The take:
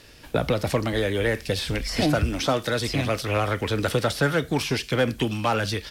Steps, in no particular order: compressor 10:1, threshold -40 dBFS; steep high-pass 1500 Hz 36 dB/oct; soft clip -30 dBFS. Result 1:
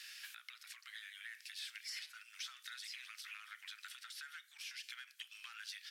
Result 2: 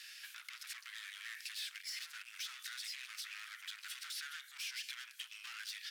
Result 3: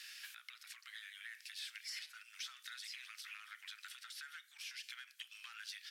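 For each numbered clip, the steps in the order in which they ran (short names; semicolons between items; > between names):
compressor > steep high-pass > soft clip; soft clip > compressor > steep high-pass; compressor > soft clip > steep high-pass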